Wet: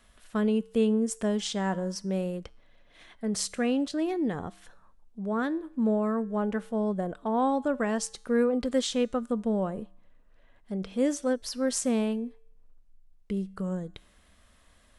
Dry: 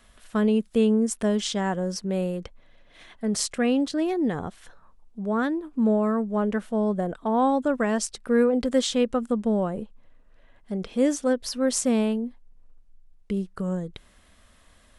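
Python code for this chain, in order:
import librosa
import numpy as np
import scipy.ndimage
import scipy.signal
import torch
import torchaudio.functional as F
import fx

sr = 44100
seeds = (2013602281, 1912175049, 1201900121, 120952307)

y = fx.comb_fb(x, sr, f0_hz=64.0, decay_s=0.66, harmonics='odd', damping=0.0, mix_pct=40)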